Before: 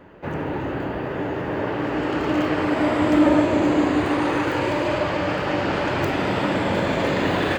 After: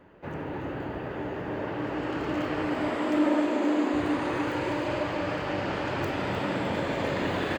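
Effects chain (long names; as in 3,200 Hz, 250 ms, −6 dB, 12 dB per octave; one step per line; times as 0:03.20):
0:02.90–0:03.94: Butterworth high-pass 200 Hz 72 dB per octave
repeating echo 305 ms, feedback 52%, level −8.5 dB
level −8 dB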